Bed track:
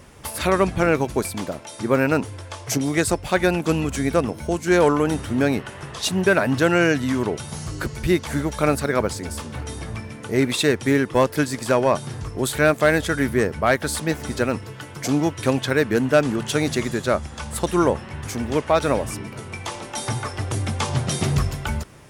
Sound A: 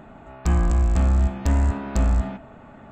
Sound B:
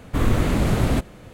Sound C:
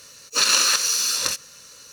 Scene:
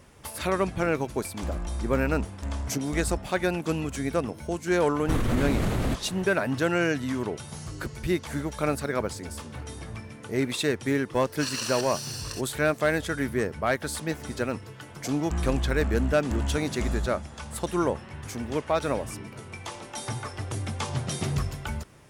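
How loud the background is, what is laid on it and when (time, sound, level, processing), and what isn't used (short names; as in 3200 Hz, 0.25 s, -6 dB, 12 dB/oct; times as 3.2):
bed track -7 dB
0.97 add A -13 dB
4.95 add B -0.5 dB + limiter -17 dBFS
11.05 add C -15 dB, fades 0.10 s + ripple EQ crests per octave 1.3, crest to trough 7 dB
14.85 add A -9.5 dB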